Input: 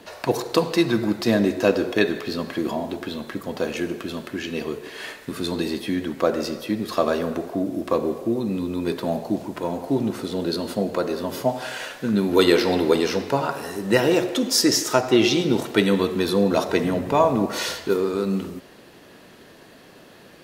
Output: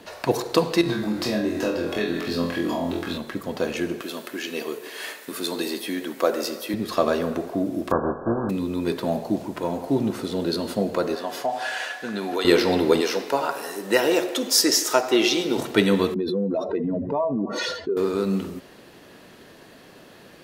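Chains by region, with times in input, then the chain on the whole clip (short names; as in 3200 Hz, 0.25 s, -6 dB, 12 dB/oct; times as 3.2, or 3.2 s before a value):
0.81–3.18 doubler 43 ms -12 dB + compressor 4:1, threshold -23 dBFS + flutter echo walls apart 4 m, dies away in 0.39 s
4.01–6.74 HPF 310 Hz + high shelf 9100 Hz +11.5 dB
7.9–8.49 spectral contrast lowered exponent 0.49 + brick-wall FIR low-pass 1700 Hz
11.15–12.45 weighting filter A + compressor 3:1, threshold -23 dBFS + small resonant body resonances 730/1700 Hz, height 14 dB, ringing for 90 ms
13.01–15.57 HPF 330 Hz + high shelf 9600 Hz +5.5 dB
16.14–17.97 spectral contrast raised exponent 2 + compressor 2.5:1, threshold -22 dBFS
whole clip: dry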